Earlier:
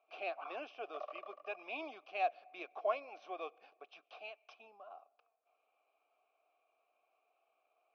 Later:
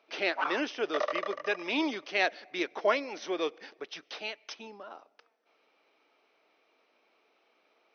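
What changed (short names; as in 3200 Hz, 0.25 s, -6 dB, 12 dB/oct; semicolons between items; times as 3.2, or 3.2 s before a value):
background +6.5 dB; master: remove vowel filter a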